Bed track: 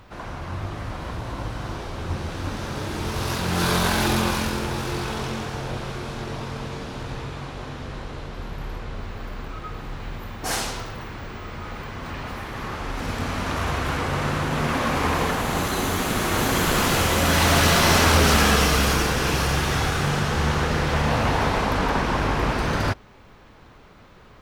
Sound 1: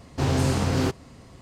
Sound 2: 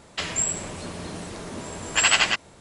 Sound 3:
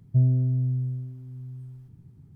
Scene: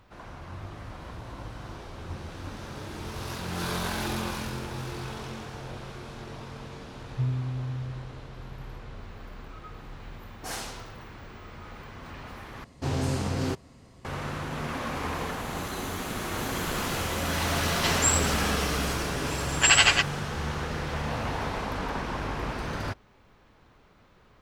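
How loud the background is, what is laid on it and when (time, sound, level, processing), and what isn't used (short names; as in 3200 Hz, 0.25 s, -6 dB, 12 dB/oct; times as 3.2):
bed track -9.5 dB
4.24 add 3 -16.5 dB + limiter -21 dBFS
7.04 add 3 -8 dB
12.64 replace with 1 -5.5 dB
17.66 add 2 -1.5 dB + comb 7.1 ms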